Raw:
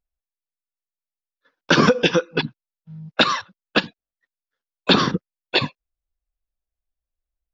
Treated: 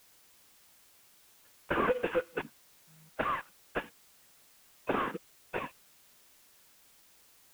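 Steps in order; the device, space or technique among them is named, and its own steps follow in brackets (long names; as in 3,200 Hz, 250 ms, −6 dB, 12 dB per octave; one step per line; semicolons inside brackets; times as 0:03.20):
army field radio (band-pass filter 400–3,100 Hz; variable-slope delta modulation 16 kbit/s; white noise bed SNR 23 dB)
level −8 dB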